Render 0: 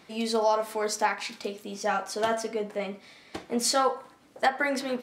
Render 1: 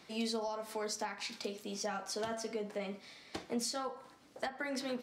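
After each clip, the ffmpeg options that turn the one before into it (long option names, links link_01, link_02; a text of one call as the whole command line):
ffmpeg -i in.wav -filter_complex "[0:a]equalizer=frequency=5100:width_type=o:width=1.1:gain=4.5,acrossover=split=220[link_01][link_02];[link_02]acompressor=threshold=-31dB:ratio=10[link_03];[link_01][link_03]amix=inputs=2:normalize=0,volume=-4.5dB" out.wav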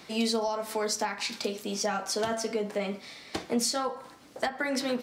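ffmpeg -i in.wav -af "highshelf=frequency=12000:gain=4.5,volume=8.5dB" out.wav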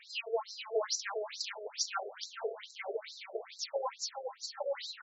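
ffmpeg -i in.wav -filter_complex "[0:a]asplit=2[link_01][link_02];[link_02]aecho=0:1:401|802|1203|1604:0.501|0.175|0.0614|0.0215[link_03];[link_01][link_03]amix=inputs=2:normalize=0,afftfilt=real='re*between(b*sr/1024,490*pow(5500/490,0.5+0.5*sin(2*PI*2.3*pts/sr))/1.41,490*pow(5500/490,0.5+0.5*sin(2*PI*2.3*pts/sr))*1.41)':imag='im*between(b*sr/1024,490*pow(5500/490,0.5+0.5*sin(2*PI*2.3*pts/sr))/1.41,490*pow(5500/490,0.5+0.5*sin(2*PI*2.3*pts/sr))*1.41)':win_size=1024:overlap=0.75" out.wav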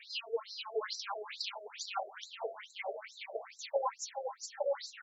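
ffmpeg -i in.wav -filter_complex "[0:a]asplit=2[link_01][link_02];[link_02]afreqshift=2.2[link_03];[link_01][link_03]amix=inputs=2:normalize=1,volume=3.5dB" out.wav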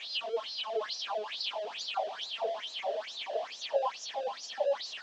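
ffmpeg -i in.wav -af "aeval=exprs='val(0)+0.5*0.0119*sgn(val(0))':channel_layout=same,highpass=frequency=220:width=0.5412,highpass=frequency=220:width=1.3066,equalizer=frequency=330:width_type=q:width=4:gain=-6,equalizer=frequency=660:width_type=q:width=4:gain=7,equalizer=frequency=1400:width_type=q:width=4:gain=-7,equalizer=frequency=2100:width_type=q:width=4:gain=-7,equalizer=frequency=3200:width_type=q:width=4:gain=7,lowpass=frequency=5300:width=0.5412,lowpass=frequency=5300:width=1.3066" out.wav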